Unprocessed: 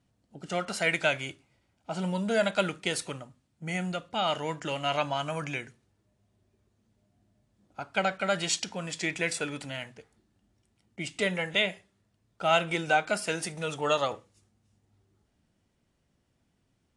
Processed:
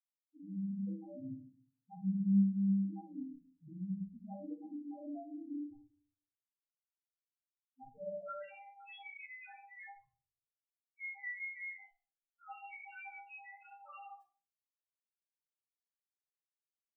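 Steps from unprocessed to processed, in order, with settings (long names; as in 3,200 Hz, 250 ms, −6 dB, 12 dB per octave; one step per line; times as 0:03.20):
downward expander −56 dBFS
low-shelf EQ 120 Hz +10 dB
in parallel at −0.5 dB: downward compressor 20 to 1, threshold −35 dBFS, peak gain reduction 18 dB
on the sum: brickwall limiter −19.5 dBFS, peak gain reduction 9 dB
resonators tuned to a chord C2 fifth, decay 0.71 s
band-pass filter sweep 260 Hz → 2,100 Hz, 0:07.89–0:08.49
steady tone 800 Hz −62 dBFS
bit reduction 9 bits
spectral peaks only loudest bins 1
rectangular room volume 250 cubic metres, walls furnished, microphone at 4 metres
level +7.5 dB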